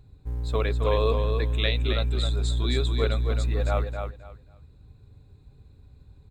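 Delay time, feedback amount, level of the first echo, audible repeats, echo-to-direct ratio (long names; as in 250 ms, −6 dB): 266 ms, 21%, −6.0 dB, 3, −6.0 dB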